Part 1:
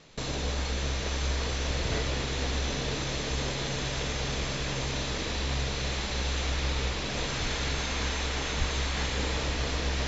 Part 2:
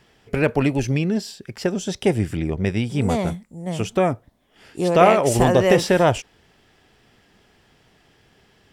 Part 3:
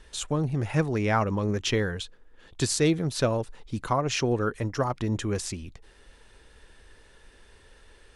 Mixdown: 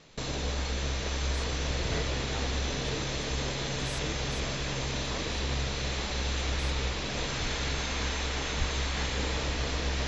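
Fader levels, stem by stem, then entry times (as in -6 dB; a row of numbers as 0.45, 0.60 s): -1.0 dB, off, -19.5 dB; 0.00 s, off, 1.20 s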